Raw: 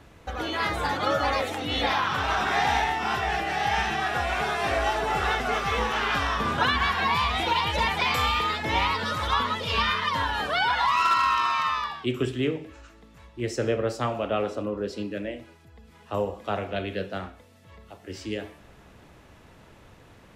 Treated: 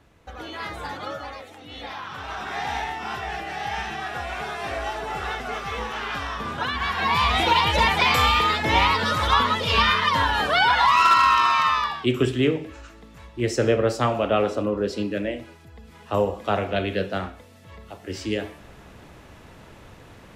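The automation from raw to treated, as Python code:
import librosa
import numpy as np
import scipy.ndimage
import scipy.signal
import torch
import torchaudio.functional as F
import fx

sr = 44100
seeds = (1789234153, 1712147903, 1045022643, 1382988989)

y = fx.gain(x, sr, db=fx.line((0.98, -6.0), (1.45, -14.0), (2.81, -4.0), (6.7, -4.0), (7.31, 5.5)))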